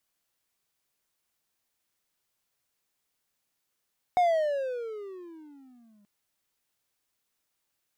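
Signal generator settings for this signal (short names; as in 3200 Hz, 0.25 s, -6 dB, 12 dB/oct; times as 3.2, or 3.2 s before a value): gliding synth tone triangle, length 1.88 s, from 733 Hz, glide -22.5 st, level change -40 dB, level -16.5 dB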